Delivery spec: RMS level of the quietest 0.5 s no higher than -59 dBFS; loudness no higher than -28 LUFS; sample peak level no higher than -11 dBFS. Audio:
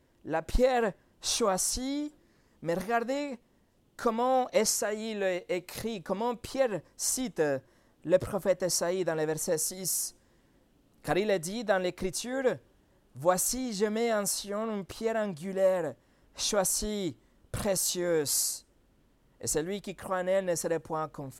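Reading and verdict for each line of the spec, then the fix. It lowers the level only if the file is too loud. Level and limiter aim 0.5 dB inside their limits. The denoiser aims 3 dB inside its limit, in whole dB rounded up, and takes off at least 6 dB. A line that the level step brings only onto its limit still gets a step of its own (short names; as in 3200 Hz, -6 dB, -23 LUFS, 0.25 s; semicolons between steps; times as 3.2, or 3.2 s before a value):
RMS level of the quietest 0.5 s -67 dBFS: OK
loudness -30.0 LUFS: OK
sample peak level -11.5 dBFS: OK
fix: none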